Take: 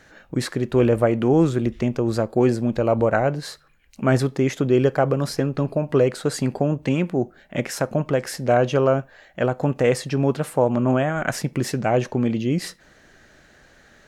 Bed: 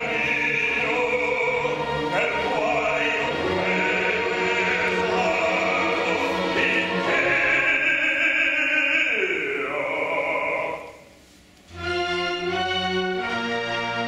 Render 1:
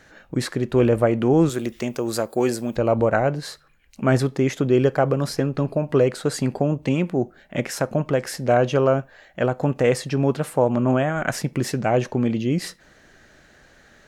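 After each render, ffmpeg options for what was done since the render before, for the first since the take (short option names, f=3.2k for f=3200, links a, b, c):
-filter_complex "[0:a]asettb=1/sr,asplit=3[a][b][c];[a]atrim=end=1.494[d];[b]atrim=start=1.49:end=2.76,asetpts=PTS-STARTPTS,afade=t=in:d=0.004:c=qsin,afade=t=out:st=1.266:d=0.004:c=qsin,aemphasis=mode=production:type=bsi[e];[c]atrim=start=2.756[f];[d][e]acrossfade=d=0.004:c1=hsin:c2=qsin[g];[g][f]acrossfade=d=0.004:c1=qsin:c2=hsin,asettb=1/sr,asplit=3[h][i][j];[h]atrim=end=6.624[k];[i]atrim=start=6.62:end=7.07,asetpts=PTS-STARTPTS,afade=t=in:d=0.004:c=qsin,afade=t=out:st=0.446:d=0.004:c=qsin,equalizer=f=1.6k:t=o:w=0.36:g=-5.5[l];[j]atrim=start=7.066[m];[k][l]acrossfade=d=0.004:c1=hsin:c2=qsin[n];[n][m]acrossfade=d=0.004:c1=qsin:c2=hsin"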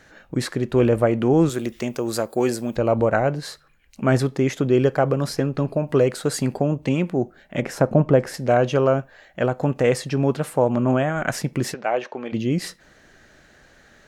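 -filter_complex "[0:a]asettb=1/sr,asplit=3[a][b][c];[a]atrim=end=5.874[d];[b]atrim=start=5.87:end=6.58,asetpts=PTS-STARTPTS,afade=t=in:d=0.004:c=qsin,afade=t=out:st=0.706:d=0.004:c=qsin,highshelf=f=9k:g=7[e];[c]atrim=start=6.576[f];[d][e]acrossfade=d=0.004:c1=hsin:c2=qsin[g];[g][f]acrossfade=d=0.004:c1=qsin:c2=hsin,asettb=1/sr,asplit=3[h][i][j];[h]atrim=end=7.624[k];[i]atrim=start=7.62:end=8.34,asetpts=PTS-STARTPTS,afade=t=in:d=0.004:c=qsin,afade=t=out:st=0.716:d=0.004:c=qsin,tiltshelf=f=1.5k:g=6.5[l];[j]atrim=start=8.336[m];[k][l]acrossfade=d=0.004:c1=hsin:c2=qsin[n];[n][m]acrossfade=d=0.004:c1=qsin:c2=hsin,asplit=3[o][p][q];[o]afade=t=out:st=11.73:d=0.02[r];[p]highpass=520,lowpass=3.8k,afade=t=in:st=11.73:d=0.02,afade=t=out:st=12.32:d=0.02[s];[q]afade=t=in:st=12.32:d=0.02[t];[r][s][t]amix=inputs=3:normalize=0"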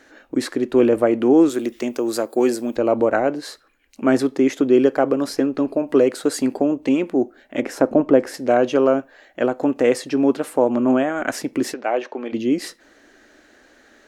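-af "lowshelf=f=210:t=q:w=3:g=-9"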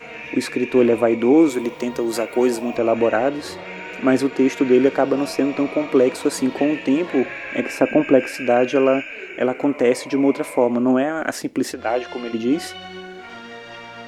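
-filter_complex "[1:a]volume=-11dB[a];[0:a][a]amix=inputs=2:normalize=0"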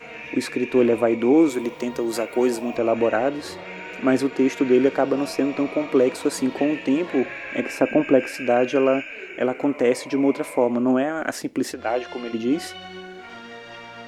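-af "volume=-2.5dB"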